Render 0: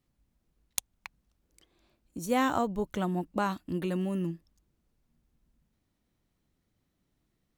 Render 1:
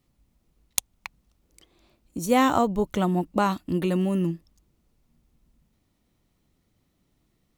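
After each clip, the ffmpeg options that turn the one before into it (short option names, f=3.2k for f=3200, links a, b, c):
-af "equalizer=f=1.6k:t=o:w=0.2:g=-6,volume=7dB"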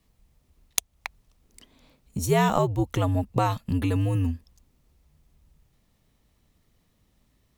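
-filter_complex "[0:a]asplit=2[a][b];[b]acompressor=threshold=-30dB:ratio=6,volume=2.5dB[c];[a][c]amix=inputs=2:normalize=0,afreqshift=-84,volume=-3.5dB"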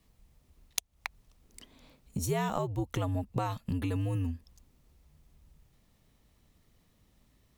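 -af "acompressor=threshold=-32dB:ratio=2.5"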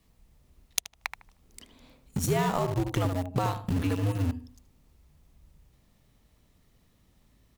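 -filter_complex "[0:a]asplit=2[a][b];[b]adelay=77,lowpass=f=1.7k:p=1,volume=-6dB,asplit=2[c][d];[d]adelay=77,lowpass=f=1.7k:p=1,volume=0.35,asplit=2[e][f];[f]adelay=77,lowpass=f=1.7k:p=1,volume=0.35,asplit=2[g][h];[h]adelay=77,lowpass=f=1.7k:p=1,volume=0.35[i];[a][c][e][g][i]amix=inputs=5:normalize=0,asplit=2[j][k];[k]acrusher=bits=4:mix=0:aa=0.000001,volume=-10dB[l];[j][l]amix=inputs=2:normalize=0,volume=1.5dB"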